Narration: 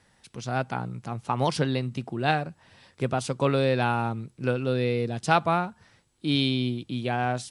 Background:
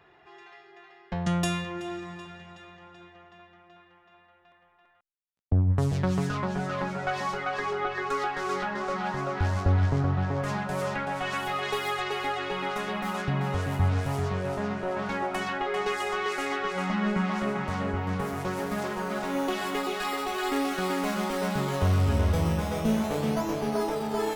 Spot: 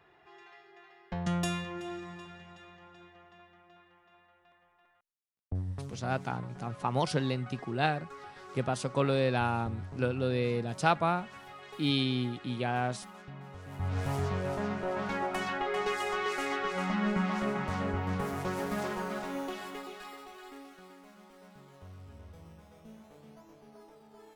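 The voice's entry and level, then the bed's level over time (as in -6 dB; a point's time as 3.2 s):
5.55 s, -4.5 dB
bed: 5.09 s -4.5 dB
6.04 s -18.5 dB
13.6 s -18.5 dB
14.05 s -3 dB
18.94 s -3 dB
21.05 s -26.5 dB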